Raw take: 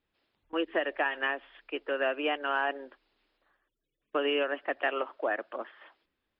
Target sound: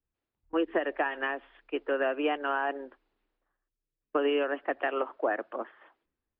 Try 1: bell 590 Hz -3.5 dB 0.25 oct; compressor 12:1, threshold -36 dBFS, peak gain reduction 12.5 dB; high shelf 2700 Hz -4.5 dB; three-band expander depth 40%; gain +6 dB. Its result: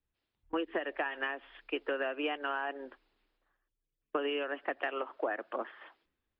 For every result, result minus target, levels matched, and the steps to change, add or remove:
compressor: peak gain reduction +8 dB; 4000 Hz band +4.5 dB
change: compressor 12:1, threshold -27.5 dBFS, peak gain reduction 5 dB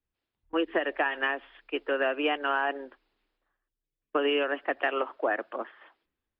4000 Hz band +5.0 dB
change: high shelf 2700 Hz -16.5 dB

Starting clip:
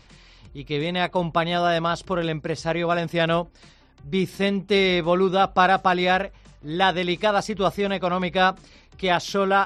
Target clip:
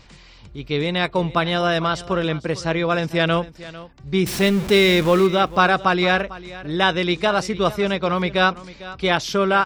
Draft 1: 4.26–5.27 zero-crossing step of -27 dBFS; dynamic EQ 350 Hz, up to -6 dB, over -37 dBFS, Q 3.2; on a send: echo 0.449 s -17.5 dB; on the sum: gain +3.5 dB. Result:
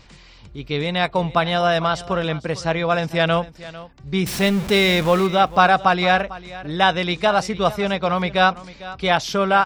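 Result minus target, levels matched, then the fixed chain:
1000 Hz band +3.0 dB
4.26–5.27 zero-crossing step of -27 dBFS; dynamic EQ 750 Hz, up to -6 dB, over -37 dBFS, Q 3.2; on a send: echo 0.449 s -17.5 dB; on the sum: gain +3.5 dB

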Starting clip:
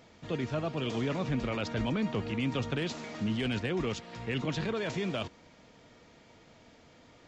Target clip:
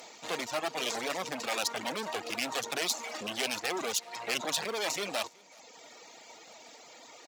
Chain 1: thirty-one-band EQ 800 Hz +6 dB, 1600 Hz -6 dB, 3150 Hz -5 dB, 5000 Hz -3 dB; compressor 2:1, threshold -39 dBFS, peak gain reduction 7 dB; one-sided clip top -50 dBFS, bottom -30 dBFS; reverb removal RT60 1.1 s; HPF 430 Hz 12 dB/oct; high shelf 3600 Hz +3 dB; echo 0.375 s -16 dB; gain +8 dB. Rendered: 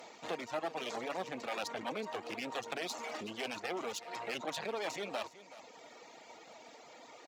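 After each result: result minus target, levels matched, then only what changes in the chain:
compressor: peak gain reduction +7 dB; 8000 Hz band -7.0 dB; echo-to-direct +10 dB
remove: compressor 2:1, threshold -39 dBFS, peak gain reduction 7 dB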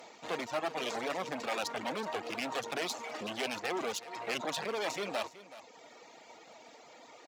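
echo-to-direct +10 dB; 8000 Hz band -6.0 dB
change: echo 0.375 s -26 dB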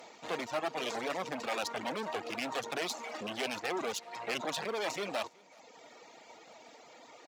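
8000 Hz band -6.0 dB
change: high shelf 3600 Hz +15 dB

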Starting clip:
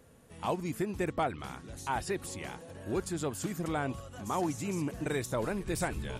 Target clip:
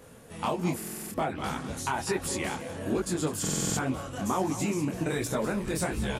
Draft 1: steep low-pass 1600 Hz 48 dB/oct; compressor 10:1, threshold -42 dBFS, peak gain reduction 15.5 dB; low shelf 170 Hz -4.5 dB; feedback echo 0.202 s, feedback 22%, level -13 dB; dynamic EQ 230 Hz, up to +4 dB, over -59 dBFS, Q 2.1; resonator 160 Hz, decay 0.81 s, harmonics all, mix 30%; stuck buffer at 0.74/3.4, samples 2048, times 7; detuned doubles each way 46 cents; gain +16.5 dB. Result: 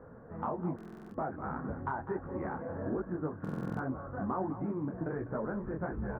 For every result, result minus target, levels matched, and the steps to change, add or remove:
compressor: peak gain reduction +6 dB; 2000 Hz band -3.0 dB
change: compressor 10:1, threshold -35 dBFS, peak gain reduction 9.5 dB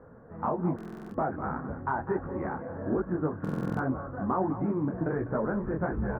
2000 Hz band -3.0 dB
remove: steep low-pass 1600 Hz 48 dB/oct

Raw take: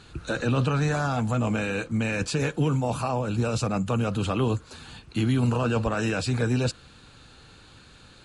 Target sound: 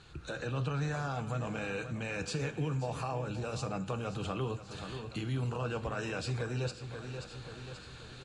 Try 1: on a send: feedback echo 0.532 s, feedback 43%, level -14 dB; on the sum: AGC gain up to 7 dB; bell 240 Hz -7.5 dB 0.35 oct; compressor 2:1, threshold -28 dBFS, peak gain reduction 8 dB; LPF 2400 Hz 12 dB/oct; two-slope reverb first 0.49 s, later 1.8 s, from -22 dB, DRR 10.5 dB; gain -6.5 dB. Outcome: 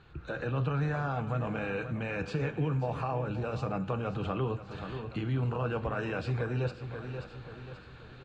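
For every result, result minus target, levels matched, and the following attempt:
8000 Hz band -17.5 dB; compressor: peak gain reduction -3.5 dB
on a send: feedback echo 0.532 s, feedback 43%, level -14 dB; on the sum: AGC gain up to 7 dB; bell 240 Hz -7.5 dB 0.35 oct; compressor 2:1, threshold -28 dBFS, peak gain reduction 8 dB; LPF 8300 Hz 12 dB/oct; two-slope reverb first 0.49 s, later 1.8 s, from -22 dB, DRR 10.5 dB; gain -6.5 dB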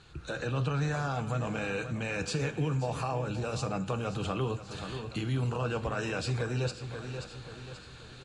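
compressor: peak gain reduction -3.5 dB
on a send: feedback echo 0.532 s, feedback 43%, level -14 dB; on the sum: AGC gain up to 7 dB; bell 240 Hz -7.5 dB 0.35 oct; compressor 2:1, threshold -35 dBFS, peak gain reduction 11.5 dB; LPF 8300 Hz 12 dB/oct; two-slope reverb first 0.49 s, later 1.8 s, from -22 dB, DRR 10.5 dB; gain -6.5 dB

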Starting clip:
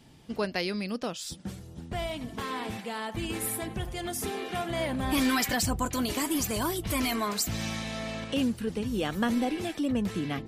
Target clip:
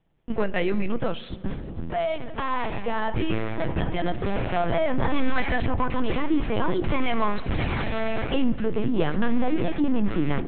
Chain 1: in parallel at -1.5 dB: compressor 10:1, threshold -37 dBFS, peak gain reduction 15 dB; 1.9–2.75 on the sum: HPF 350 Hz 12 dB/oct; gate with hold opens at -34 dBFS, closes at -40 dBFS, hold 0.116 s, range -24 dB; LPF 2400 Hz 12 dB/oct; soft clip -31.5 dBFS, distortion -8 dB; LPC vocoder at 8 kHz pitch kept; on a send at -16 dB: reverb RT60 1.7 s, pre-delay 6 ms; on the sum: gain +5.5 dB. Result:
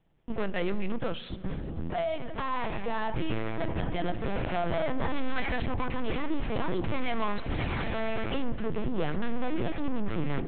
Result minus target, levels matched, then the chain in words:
compressor: peak gain reduction +6.5 dB; soft clip: distortion +8 dB
in parallel at -1.5 dB: compressor 10:1, threshold -30 dBFS, peak gain reduction 8.5 dB; 1.9–2.75 on the sum: HPF 350 Hz 12 dB/oct; gate with hold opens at -34 dBFS, closes at -40 dBFS, hold 0.116 s, range -24 dB; LPF 2400 Hz 12 dB/oct; soft clip -21.5 dBFS, distortion -16 dB; LPC vocoder at 8 kHz pitch kept; on a send at -16 dB: reverb RT60 1.7 s, pre-delay 6 ms; on the sum: gain +5.5 dB

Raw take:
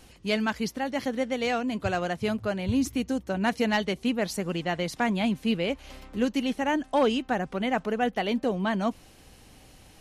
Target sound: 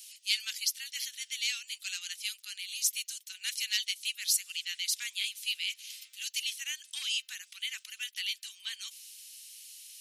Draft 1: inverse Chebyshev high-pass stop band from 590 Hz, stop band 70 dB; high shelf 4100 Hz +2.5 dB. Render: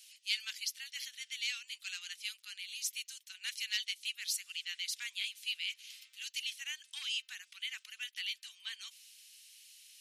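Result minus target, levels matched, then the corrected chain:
8000 Hz band -3.5 dB
inverse Chebyshev high-pass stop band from 590 Hz, stop band 70 dB; high shelf 4100 Hz +14 dB

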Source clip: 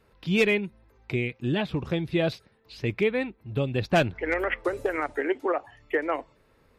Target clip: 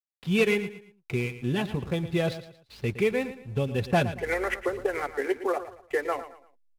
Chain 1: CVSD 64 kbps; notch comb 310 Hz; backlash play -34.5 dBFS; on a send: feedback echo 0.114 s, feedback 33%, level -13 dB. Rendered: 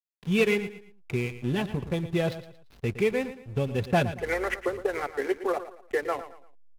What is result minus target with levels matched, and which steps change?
backlash: distortion +8 dB
change: backlash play -43.5 dBFS

